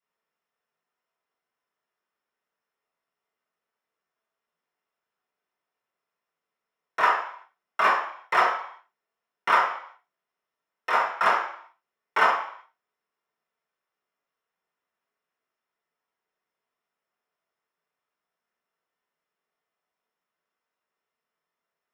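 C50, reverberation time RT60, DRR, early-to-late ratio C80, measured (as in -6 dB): 4.0 dB, 0.60 s, -8.5 dB, 8.0 dB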